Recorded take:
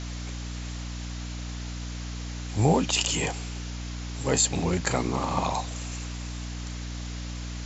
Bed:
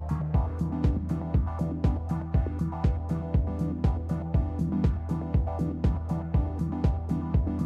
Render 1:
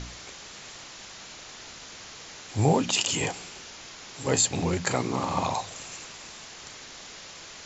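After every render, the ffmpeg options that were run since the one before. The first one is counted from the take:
-af "bandreject=f=60:t=h:w=4,bandreject=f=120:t=h:w=4,bandreject=f=180:t=h:w=4,bandreject=f=240:t=h:w=4,bandreject=f=300:t=h:w=4"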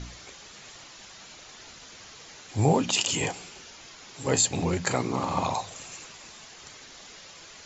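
-af "afftdn=nr=6:nf=-45"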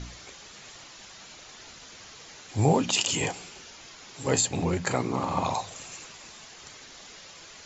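-filter_complex "[0:a]asettb=1/sr,asplit=3[a][b][c];[a]atrim=end=4.404[d];[b]atrim=start=4.4:end=5.46,asetpts=PTS-STARTPTS,afade=t=in:d=0.004:c=qsin,afade=t=out:st=1.056:d=0.004:c=qsin,equalizer=f=5.5k:w=0.61:g=-3.5[e];[c]atrim=start=5.456[f];[d][e]acrossfade=d=0.004:c1=hsin:c2=qsin[g];[g][f]acrossfade=d=0.004:c1=qsin:c2=hsin"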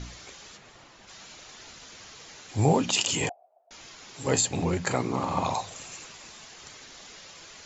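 -filter_complex "[0:a]asplit=3[a][b][c];[a]afade=t=out:st=0.56:d=0.02[d];[b]highshelf=f=2.6k:g=-12,afade=t=in:st=0.56:d=0.02,afade=t=out:st=1.07:d=0.02[e];[c]afade=t=in:st=1.07:d=0.02[f];[d][e][f]amix=inputs=3:normalize=0,asettb=1/sr,asplit=3[g][h][i];[g]atrim=end=3.294[j];[h]atrim=start=3.29:end=3.71,asetpts=PTS-STARTPTS,afade=t=in:d=0.004:c=qsin,afade=t=out:st=0.416:d=0.004:c=qsin,asuperpass=centerf=670:order=4:qfactor=5.8[k];[i]atrim=start=3.706[l];[j][k]acrossfade=d=0.004:c1=hsin:c2=qsin[m];[m][l]acrossfade=d=0.004:c1=qsin:c2=hsin"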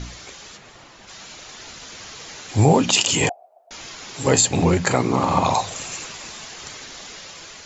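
-filter_complex "[0:a]asplit=2[a][b];[b]alimiter=limit=-17dB:level=0:latency=1:release=282,volume=0.5dB[c];[a][c]amix=inputs=2:normalize=0,dynaudnorm=f=750:g=5:m=7dB"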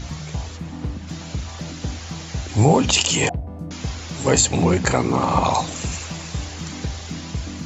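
-filter_complex "[1:a]volume=-3dB[a];[0:a][a]amix=inputs=2:normalize=0"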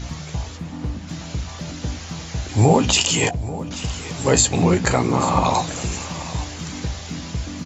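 -filter_complex "[0:a]asplit=2[a][b];[b]adelay=17,volume=-10.5dB[c];[a][c]amix=inputs=2:normalize=0,aecho=1:1:836:0.158"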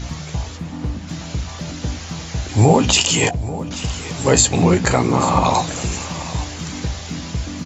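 -af "volume=2.5dB,alimiter=limit=-1dB:level=0:latency=1"

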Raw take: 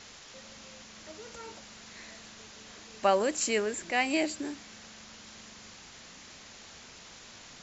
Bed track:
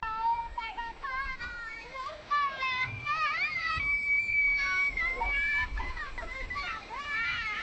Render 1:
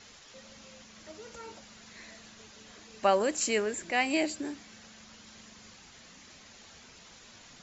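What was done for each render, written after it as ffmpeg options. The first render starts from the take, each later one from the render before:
-af "afftdn=nr=6:nf=-51"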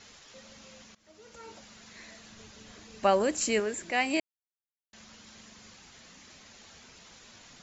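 -filter_complex "[0:a]asettb=1/sr,asplit=3[a][b][c];[a]atrim=end=2.304[d];[b]atrim=start=2.3:end=3.6,asetpts=PTS-STARTPTS,afade=t=in:d=0.004:c=qsin,afade=t=out:st=1.296:d=0.004:c=qsin,lowshelf=f=190:g=8[e];[c]atrim=start=3.596[f];[d][e]acrossfade=d=0.004:c1=hsin:c2=qsin[g];[g][f]acrossfade=d=0.004:c1=qsin:c2=hsin,asplit=4[h][i][j][k];[h]atrim=end=0.95,asetpts=PTS-STARTPTS,afade=t=out:st=0.946:d=0.004:c=hsin:silence=0.0891251[l];[i]atrim=start=0.95:end=4.2,asetpts=PTS-STARTPTS,afade=t=in:d=0.66:silence=0.0891251,afade=t=out:st=3.246:d=0.004:c=hsin[m];[j]atrim=start=4.2:end=4.93,asetpts=PTS-STARTPTS,volume=0[n];[k]atrim=start=4.93,asetpts=PTS-STARTPTS,afade=t=in:d=0.004:c=hsin[o];[l][m][n][o]concat=n=4:v=0:a=1"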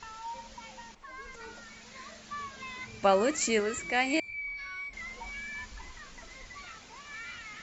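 -filter_complex "[1:a]volume=-11.5dB[a];[0:a][a]amix=inputs=2:normalize=0"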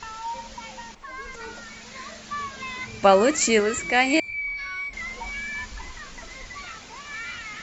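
-af "volume=8dB"

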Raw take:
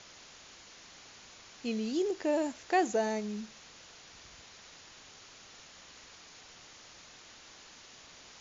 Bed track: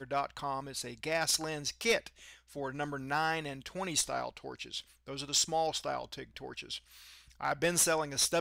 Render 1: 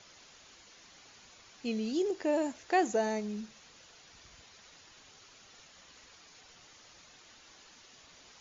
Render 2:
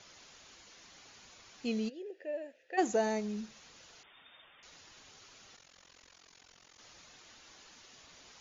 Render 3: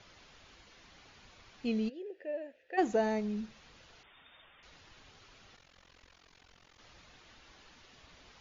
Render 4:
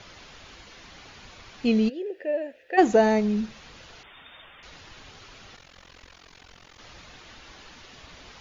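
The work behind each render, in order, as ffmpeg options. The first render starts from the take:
-af "afftdn=nr=6:nf=-54"
-filter_complex "[0:a]asplit=3[a][b][c];[a]afade=t=out:st=1.88:d=0.02[d];[b]asplit=3[e][f][g];[e]bandpass=f=530:t=q:w=8,volume=0dB[h];[f]bandpass=f=1.84k:t=q:w=8,volume=-6dB[i];[g]bandpass=f=2.48k:t=q:w=8,volume=-9dB[j];[h][i][j]amix=inputs=3:normalize=0,afade=t=in:st=1.88:d=0.02,afade=t=out:st=2.77:d=0.02[k];[c]afade=t=in:st=2.77:d=0.02[l];[d][k][l]amix=inputs=3:normalize=0,asettb=1/sr,asplit=3[m][n][o];[m]atrim=end=4.034[p];[n]atrim=start=4.03:end=4.63,asetpts=PTS-STARTPTS,afade=t=in:d=0.004:c=qsin,afade=t=out:st=0.596:d=0.004:c=qsin,lowpass=f=3.1k:t=q:w=0.5098,lowpass=f=3.1k:t=q:w=0.6013,lowpass=f=3.1k:t=q:w=0.9,lowpass=f=3.1k:t=q:w=2.563,afreqshift=-3700[q];[o]atrim=start=4.626[r];[p][q]acrossfade=d=0.004:c1=hsin:c2=qsin[s];[s][r]acrossfade=d=0.004:c1=qsin:c2=hsin,asettb=1/sr,asplit=3[t][u][v];[t]atrim=end=5.564[w];[u]atrim=start=5.56:end=6.79,asetpts=PTS-STARTPTS,afade=t=in:d=0.004:c=qsin,afade=t=out:st=1.226:d=0.004:c=qsin,tremolo=f=44:d=0.919[x];[v]atrim=start=6.786[y];[w][x]acrossfade=d=0.004:c1=hsin:c2=qsin[z];[z][y]acrossfade=d=0.004:c1=qsin:c2=hsin"
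-af "lowpass=4k,lowshelf=f=100:g=12"
-af "volume=11dB"

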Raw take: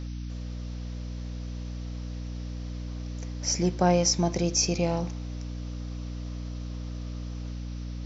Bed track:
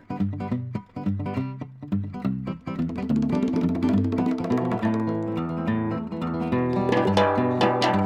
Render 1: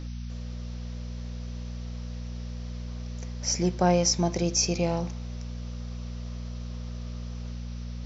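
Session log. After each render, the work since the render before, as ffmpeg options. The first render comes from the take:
-af "bandreject=f=50:t=h:w=6,bandreject=f=100:t=h:w=6,bandreject=f=150:t=h:w=6,bandreject=f=200:t=h:w=6,bandreject=f=250:t=h:w=6,bandreject=f=300:t=h:w=6"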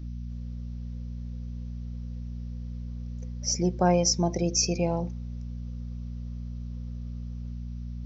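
-af "afftdn=nr=15:nf=-36"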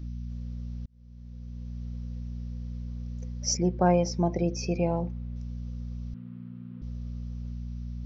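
-filter_complex "[0:a]asettb=1/sr,asplit=3[a][b][c];[a]atrim=end=3.574[d];[b]atrim=start=3.57:end=5.36,asetpts=PTS-STARTPTS,afade=t=in:d=0.004:c=qsin,afade=t=out:st=1.786:d=0.004:c=qsin,lowpass=2.7k[e];[c]atrim=start=5.356[f];[d][e]acrossfade=d=0.004:c1=hsin:c2=qsin[g];[g][f]acrossfade=d=0.004:c1=qsin:c2=hsin,asettb=1/sr,asplit=3[h][i][j];[h]atrim=end=6.144[k];[i]atrim=start=6.14:end=6.82,asetpts=PTS-STARTPTS,afade=t=in:d=0.004:c=qsin,afade=t=out:st=0.676:d=0.004:c=qsin,highpass=f=130:w=0.5412,highpass=f=130:w=1.3066,equalizer=f=220:t=q:w=4:g=3,equalizer=f=320:t=q:w=4:g=7,equalizer=f=610:t=q:w=4:g=-8,equalizer=f=1.4k:t=q:w=4:g=6,lowpass=f=2.8k:w=0.5412,lowpass=f=2.8k:w=1.3066[l];[j]atrim=start=6.816[m];[k][l]acrossfade=d=0.004:c1=hsin:c2=qsin[n];[n][m]acrossfade=d=0.004:c1=qsin:c2=hsin,asplit=2[o][p];[o]atrim=end=0.86,asetpts=PTS-STARTPTS,afade=t=out:st=0.856:d=0.004:c=hsin[q];[p]atrim=start=0.86,asetpts=PTS-STARTPTS,afade=t=in:d=0.97[r];[q][r]concat=n=2:v=0:a=1"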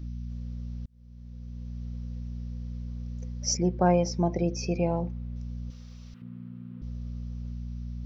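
-filter_complex "[0:a]asettb=1/sr,asplit=3[a][b][c];[a]atrim=end=5.704[d];[b]atrim=start=5.7:end=6.22,asetpts=PTS-STARTPTS,afade=t=in:d=0.004:c=qsin,afade=t=out:st=0.516:d=0.004:c=qsin,tiltshelf=f=700:g=-9[e];[c]atrim=start=6.216[f];[d][e]acrossfade=d=0.004:c1=hsin:c2=qsin[g];[g][f]acrossfade=d=0.004:c1=qsin:c2=hsin"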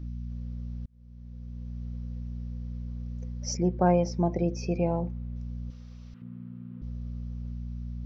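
-af "highshelf=f=3.1k:g=-8.5"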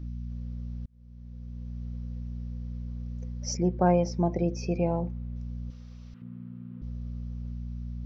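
-af anull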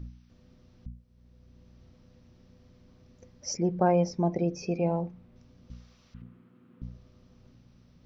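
-af "bandreject=f=59.93:t=h:w=4,bandreject=f=119.86:t=h:w=4,bandreject=f=179.79:t=h:w=4,bandreject=f=239.72:t=h:w=4,bandreject=f=299.65:t=h:w=4"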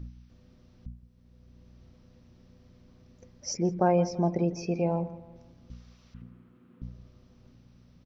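-filter_complex "[0:a]asplit=2[a][b];[b]adelay=167,lowpass=f=2.3k:p=1,volume=-16dB,asplit=2[c][d];[d]adelay=167,lowpass=f=2.3k:p=1,volume=0.43,asplit=2[e][f];[f]adelay=167,lowpass=f=2.3k:p=1,volume=0.43,asplit=2[g][h];[h]adelay=167,lowpass=f=2.3k:p=1,volume=0.43[i];[a][c][e][g][i]amix=inputs=5:normalize=0"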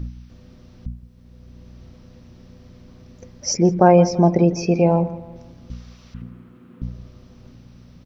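-af "volume=11.5dB,alimiter=limit=-1dB:level=0:latency=1"

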